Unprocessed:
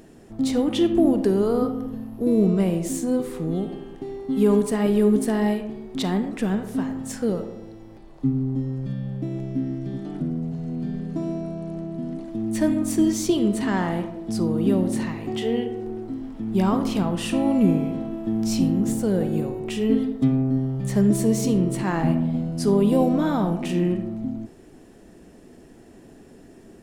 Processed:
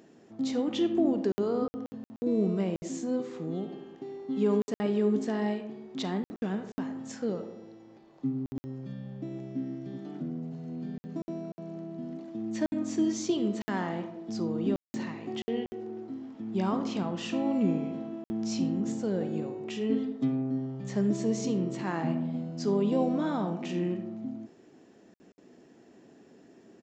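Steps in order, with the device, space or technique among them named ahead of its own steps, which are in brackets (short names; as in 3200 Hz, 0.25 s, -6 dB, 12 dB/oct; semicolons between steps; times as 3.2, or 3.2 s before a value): call with lost packets (HPF 170 Hz 12 dB/oct; downsampling 16000 Hz; packet loss packets of 60 ms random); gain -7 dB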